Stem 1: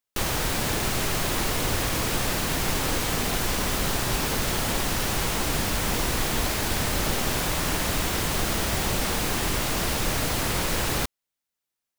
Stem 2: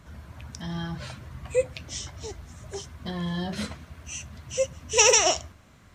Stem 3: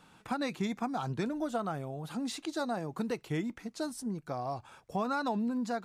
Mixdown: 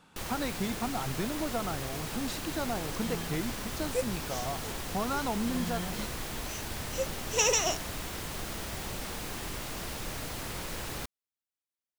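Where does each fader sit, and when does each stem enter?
-12.0, -8.0, -0.5 dB; 0.00, 2.40, 0.00 s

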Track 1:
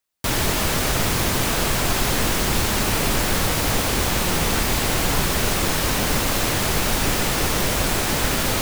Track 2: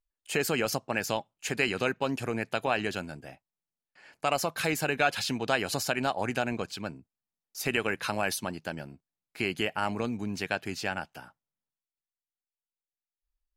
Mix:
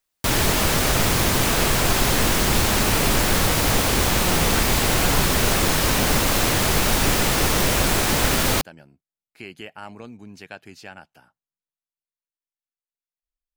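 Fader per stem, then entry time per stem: +1.5, -8.0 dB; 0.00, 0.00 s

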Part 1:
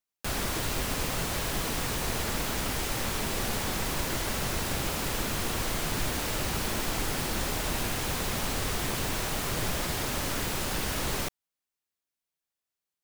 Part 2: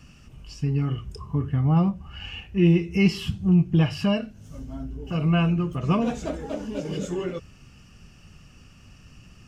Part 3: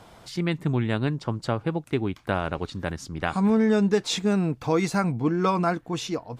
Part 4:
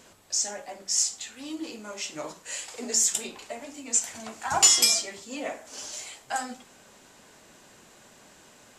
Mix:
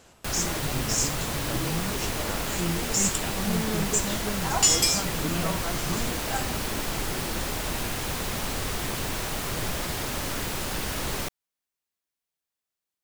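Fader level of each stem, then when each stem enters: +0.5, -12.5, -11.5, -2.5 dB; 0.00, 0.00, 0.00, 0.00 s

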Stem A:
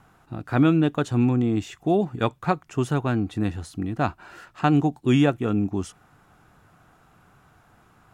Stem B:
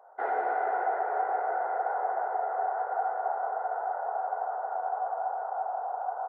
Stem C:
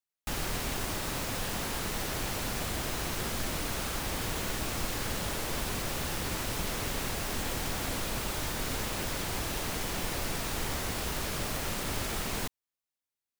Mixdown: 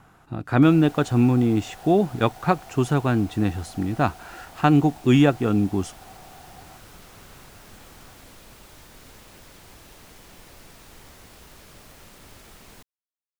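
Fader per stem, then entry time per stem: +2.5, -16.5, -14.0 dB; 0.00, 0.50, 0.35 s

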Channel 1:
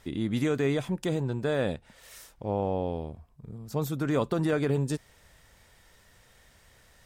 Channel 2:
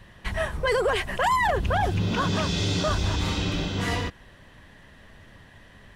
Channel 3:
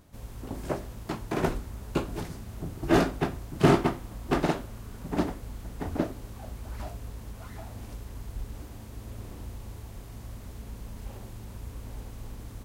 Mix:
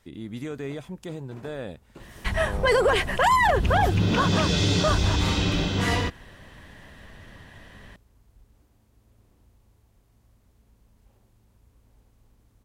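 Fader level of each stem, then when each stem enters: -7.0, +3.0, -19.5 dB; 0.00, 2.00, 0.00 s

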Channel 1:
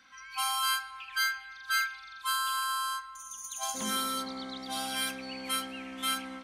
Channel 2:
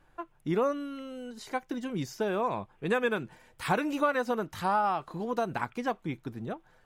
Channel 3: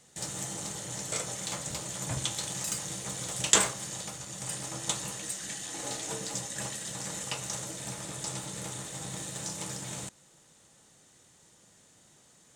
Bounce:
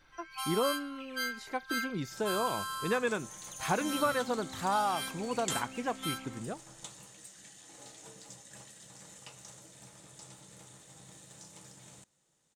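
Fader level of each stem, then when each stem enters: -6.5, -3.0, -15.0 dB; 0.00, 0.00, 1.95 s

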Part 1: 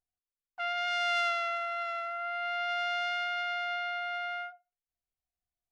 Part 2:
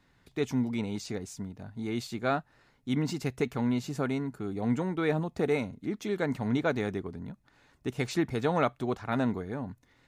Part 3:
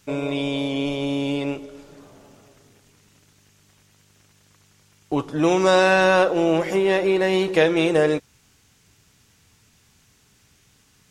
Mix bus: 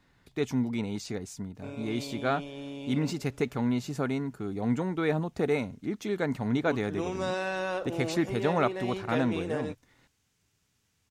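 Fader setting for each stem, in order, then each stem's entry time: off, +0.5 dB, -15.5 dB; off, 0.00 s, 1.55 s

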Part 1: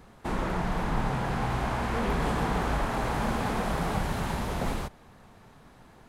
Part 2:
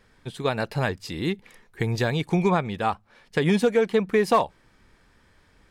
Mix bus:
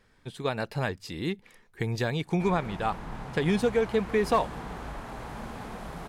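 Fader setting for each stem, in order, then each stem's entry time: -10.5, -4.5 dB; 2.15, 0.00 s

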